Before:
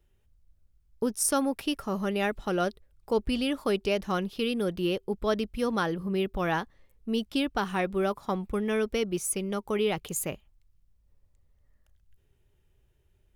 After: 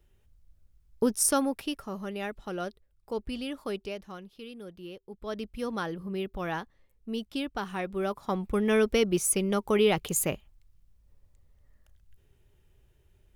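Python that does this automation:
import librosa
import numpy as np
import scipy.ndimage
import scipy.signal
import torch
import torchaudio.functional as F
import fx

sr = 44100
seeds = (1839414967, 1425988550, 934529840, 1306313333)

y = fx.gain(x, sr, db=fx.line((1.15, 3.0), (1.98, -7.0), (3.76, -7.0), (4.18, -15.0), (5.06, -15.0), (5.46, -5.0), (7.85, -5.0), (8.74, 4.0)))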